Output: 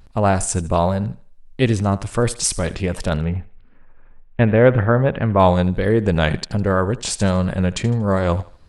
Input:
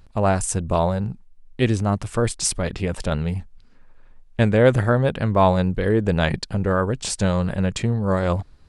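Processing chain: 3.20–5.40 s: low-pass 2.7 kHz 24 dB/octave; vibrato 1.4 Hz 48 cents; thinning echo 78 ms, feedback 34%, high-pass 270 Hz, level -17 dB; trim +2.5 dB

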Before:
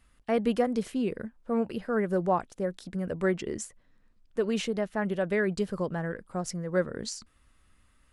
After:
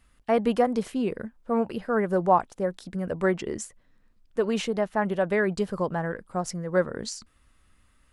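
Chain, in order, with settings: dynamic bell 900 Hz, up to +7 dB, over -44 dBFS, Q 1.3; trim +1.5 dB

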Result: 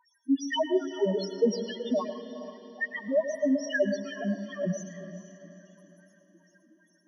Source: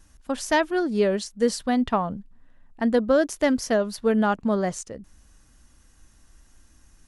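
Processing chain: partial rectifier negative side -7 dB; dynamic bell 810 Hz, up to -5 dB, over -36 dBFS, Q 1.1; LFO high-pass sine 2.5 Hz 210–2800 Hz; rippled EQ curve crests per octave 1.2, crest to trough 6 dB; harmonic-percussive split percussive +8 dB; in parallel at -1 dB: compression 12:1, threshold -33 dBFS, peak gain reduction 21.5 dB; 2.93–3.67 s: on the sum: AM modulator 130 Hz, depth 70%; touch-sensitive flanger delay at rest 3.4 ms, full sweep at -16 dBFS; loudest bins only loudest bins 2; echo that smears into a reverb 457 ms, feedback 42%, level -12 dB; on a send at -10.5 dB: reverberation RT60 0.65 s, pre-delay 100 ms

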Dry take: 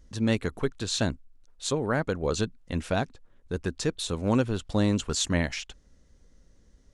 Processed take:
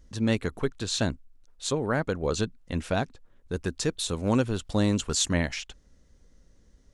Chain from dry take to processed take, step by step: 3.52–5.33 s: treble shelf 6.3 kHz +5.5 dB

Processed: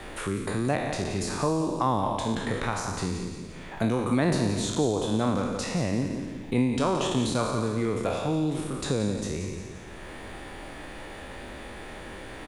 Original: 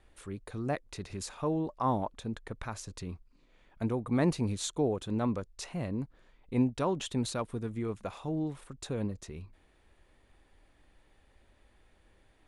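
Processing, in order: spectral sustain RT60 0.92 s; feedback delay 173 ms, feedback 30%, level -10 dB; three bands compressed up and down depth 70%; trim +4.5 dB

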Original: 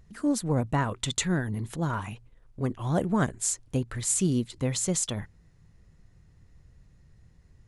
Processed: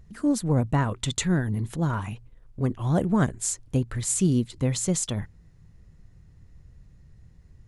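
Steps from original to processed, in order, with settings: bass shelf 290 Hz +5.5 dB

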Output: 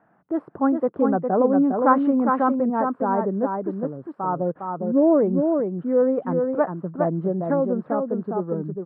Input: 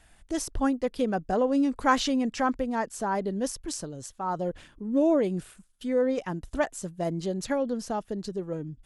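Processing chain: elliptic band-pass 150–1300 Hz, stop band 60 dB; delay 407 ms -4.5 dB; trim +6 dB

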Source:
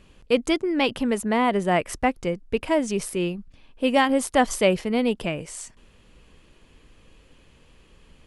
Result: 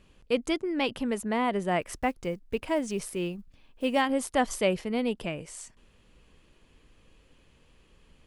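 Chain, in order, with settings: 1.81–4.02 s: block-companded coder 7-bit; trim -6 dB

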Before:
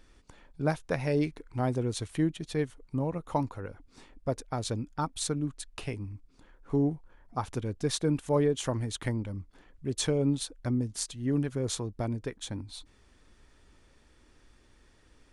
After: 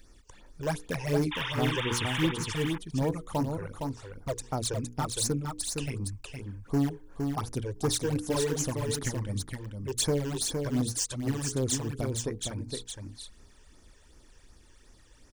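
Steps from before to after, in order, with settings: treble shelf 5.2 kHz +10 dB; hum notches 60/120/180/240/300/360/420/480 Hz; in parallel at -10 dB: integer overflow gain 23.5 dB; on the sum: painted sound noise, 1.31–2.32 s, 820–3700 Hz -32 dBFS; phase shifter stages 12, 2.7 Hz, lowest notch 210–3500 Hz; on a send: delay 463 ms -5 dB

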